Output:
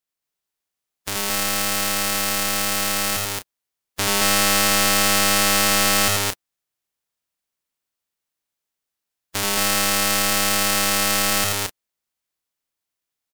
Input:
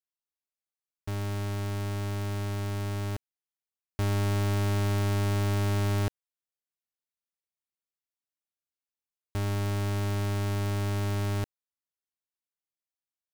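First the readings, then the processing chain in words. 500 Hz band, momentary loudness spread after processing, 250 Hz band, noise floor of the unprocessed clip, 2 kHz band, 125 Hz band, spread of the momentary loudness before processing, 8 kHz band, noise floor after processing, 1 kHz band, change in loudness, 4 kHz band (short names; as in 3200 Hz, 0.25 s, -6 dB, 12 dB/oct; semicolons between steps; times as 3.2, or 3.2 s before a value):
+8.0 dB, 10 LU, +6.0 dB, under -85 dBFS, +18.5 dB, -7.0 dB, 7 LU, +25.5 dB, -84 dBFS, +14.5 dB, +12.0 dB, +22.0 dB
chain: spectral contrast lowered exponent 0.25; loudspeakers at several distances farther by 29 m -3 dB, 76 m -1 dB, 87 m -12 dB; slew limiter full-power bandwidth 1500 Hz; gain +7 dB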